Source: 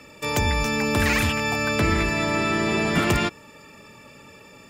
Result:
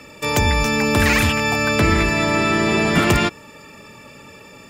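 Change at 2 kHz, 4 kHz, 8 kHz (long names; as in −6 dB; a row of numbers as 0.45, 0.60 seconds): +5.0, +5.0, +5.0 decibels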